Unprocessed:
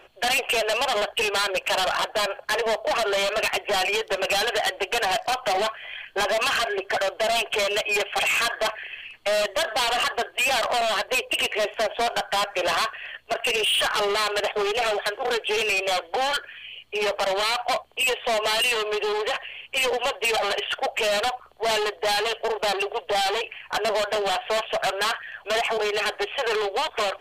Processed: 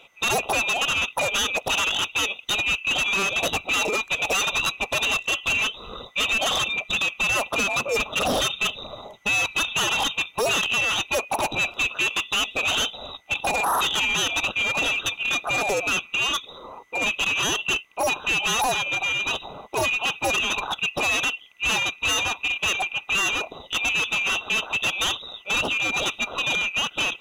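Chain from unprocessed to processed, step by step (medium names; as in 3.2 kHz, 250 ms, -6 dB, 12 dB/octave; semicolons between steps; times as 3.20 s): split-band scrambler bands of 2 kHz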